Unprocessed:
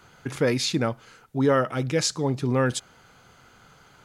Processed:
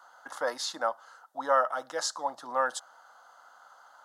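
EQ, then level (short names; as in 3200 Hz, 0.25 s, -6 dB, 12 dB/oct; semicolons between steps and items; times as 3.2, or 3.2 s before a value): HPF 490 Hz 24 dB/oct; high shelf 2800 Hz -11.5 dB; fixed phaser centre 990 Hz, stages 4; +5.0 dB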